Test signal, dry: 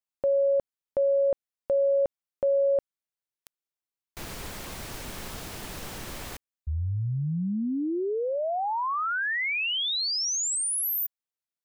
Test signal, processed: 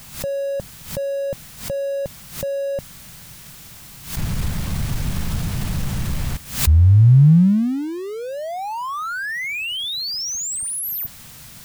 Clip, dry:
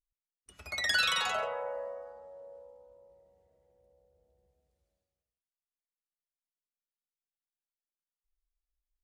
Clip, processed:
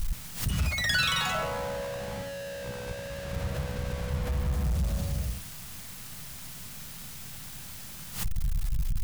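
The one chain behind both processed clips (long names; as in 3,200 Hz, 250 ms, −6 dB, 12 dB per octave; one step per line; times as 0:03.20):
converter with a step at zero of −32 dBFS
low shelf with overshoot 240 Hz +13.5 dB, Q 1.5
background raised ahead of every attack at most 120 dB per second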